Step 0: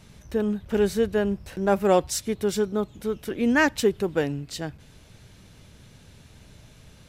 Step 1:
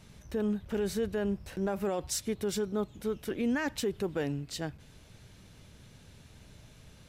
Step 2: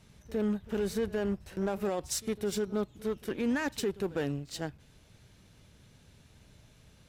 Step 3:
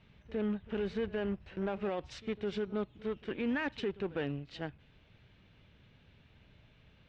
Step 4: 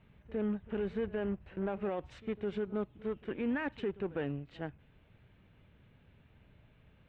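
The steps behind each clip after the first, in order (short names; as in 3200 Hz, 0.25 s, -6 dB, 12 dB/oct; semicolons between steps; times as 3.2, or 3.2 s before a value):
limiter -19 dBFS, peak gain reduction 11.5 dB; gain -4 dB
added harmonics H 7 -25 dB, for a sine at -22.5 dBFS; pre-echo 57 ms -20 dB
ladder low-pass 3600 Hz, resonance 35%; gain +4 dB
bell 5200 Hz -15 dB 1.3 oct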